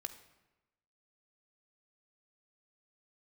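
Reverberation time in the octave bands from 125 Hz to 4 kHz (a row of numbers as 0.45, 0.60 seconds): 1.1, 1.1, 1.0, 1.0, 0.95, 0.75 seconds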